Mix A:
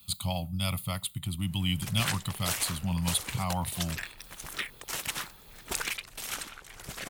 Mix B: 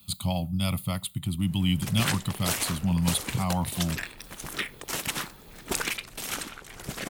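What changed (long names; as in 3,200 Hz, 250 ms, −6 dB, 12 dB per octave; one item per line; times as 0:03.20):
background: send on
master: add parametric band 250 Hz +7.5 dB 2.2 octaves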